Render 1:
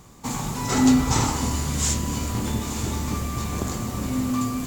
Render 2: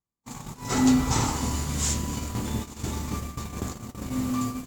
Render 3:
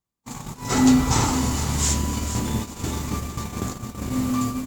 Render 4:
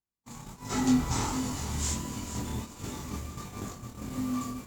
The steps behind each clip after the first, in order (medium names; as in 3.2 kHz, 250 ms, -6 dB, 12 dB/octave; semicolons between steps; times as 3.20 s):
gate -26 dBFS, range -41 dB; trim -3 dB
delay 460 ms -10.5 dB; trim +4 dB
chorus 1.4 Hz, delay 19.5 ms, depth 5.7 ms; trim -6.5 dB